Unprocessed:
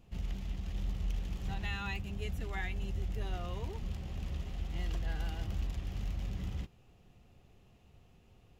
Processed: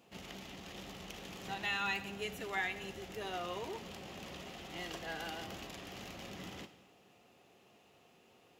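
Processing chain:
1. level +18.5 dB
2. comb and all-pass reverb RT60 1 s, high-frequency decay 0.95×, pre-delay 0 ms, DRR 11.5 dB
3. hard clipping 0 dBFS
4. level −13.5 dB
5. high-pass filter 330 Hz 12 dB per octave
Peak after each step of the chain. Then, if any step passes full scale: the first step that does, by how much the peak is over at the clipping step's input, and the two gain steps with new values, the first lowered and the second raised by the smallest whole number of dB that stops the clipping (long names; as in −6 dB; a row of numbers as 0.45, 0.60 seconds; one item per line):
−6.5, −5.0, −5.0, −18.5, −23.0 dBFS
no step passes full scale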